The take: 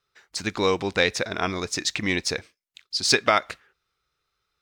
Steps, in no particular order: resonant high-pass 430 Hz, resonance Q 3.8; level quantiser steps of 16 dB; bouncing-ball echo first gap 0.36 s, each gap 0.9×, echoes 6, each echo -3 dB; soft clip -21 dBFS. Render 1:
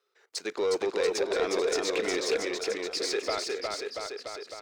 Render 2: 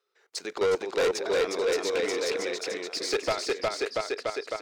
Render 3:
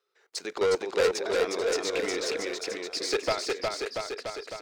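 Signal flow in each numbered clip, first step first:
level quantiser > resonant high-pass > soft clip > bouncing-ball echo; resonant high-pass > level quantiser > bouncing-ball echo > soft clip; resonant high-pass > level quantiser > soft clip > bouncing-ball echo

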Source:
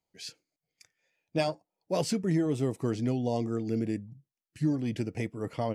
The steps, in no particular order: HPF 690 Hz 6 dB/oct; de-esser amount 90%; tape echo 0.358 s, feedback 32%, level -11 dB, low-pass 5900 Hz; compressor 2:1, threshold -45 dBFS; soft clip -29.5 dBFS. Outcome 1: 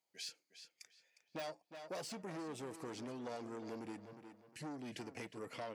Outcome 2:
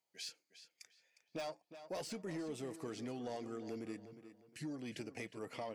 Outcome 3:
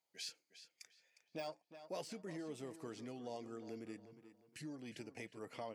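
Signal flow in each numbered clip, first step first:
soft clip > de-esser > tape echo > HPF > compressor; HPF > soft clip > de-esser > compressor > tape echo; de-esser > compressor > tape echo > HPF > soft clip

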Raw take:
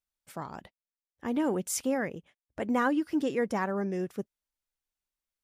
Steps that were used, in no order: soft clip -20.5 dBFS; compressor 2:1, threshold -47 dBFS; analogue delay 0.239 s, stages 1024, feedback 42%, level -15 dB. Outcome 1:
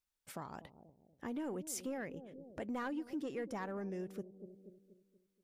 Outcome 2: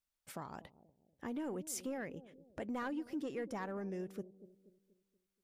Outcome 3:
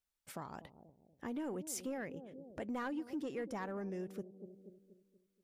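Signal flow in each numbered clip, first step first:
soft clip > analogue delay > compressor; soft clip > compressor > analogue delay; analogue delay > soft clip > compressor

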